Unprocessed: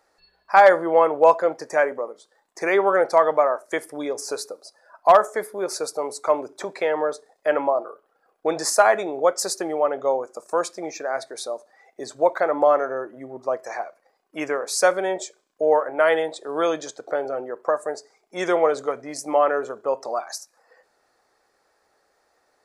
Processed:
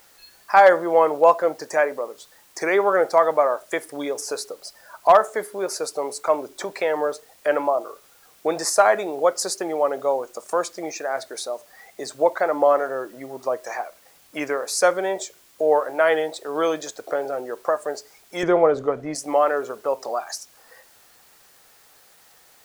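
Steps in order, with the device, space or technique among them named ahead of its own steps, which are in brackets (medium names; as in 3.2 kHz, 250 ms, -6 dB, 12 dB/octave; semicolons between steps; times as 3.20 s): noise-reduction cassette on a plain deck (tape noise reduction on one side only encoder only; wow and flutter; white noise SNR 32 dB); 18.43–19.15 s: RIAA curve playback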